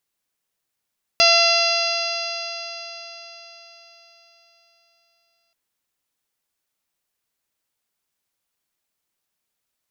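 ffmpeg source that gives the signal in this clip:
-f lavfi -i "aevalsrc='0.126*pow(10,-3*t/4.49)*sin(2*PI*676.32*t)+0.0708*pow(10,-3*t/4.49)*sin(2*PI*1354.57*t)+0.0473*pow(10,-3*t/4.49)*sin(2*PI*2036.65*t)+0.141*pow(10,-3*t/4.49)*sin(2*PI*2724.47*t)+0.0562*pow(10,-3*t/4.49)*sin(2*PI*3419.9*t)+0.0891*pow(10,-3*t/4.49)*sin(2*PI*4124.77*t)+0.188*pow(10,-3*t/4.49)*sin(2*PI*4840.88*t)+0.0596*pow(10,-3*t/4.49)*sin(2*PI*5569.98*t)+0.0398*pow(10,-3*t/4.49)*sin(2*PI*6313.74*t)':d=4.33:s=44100"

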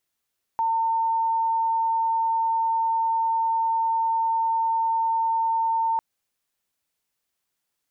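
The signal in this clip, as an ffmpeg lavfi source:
-f lavfi -i "sine=f=905:d=5.4:r=44100,volume=-1.94dB"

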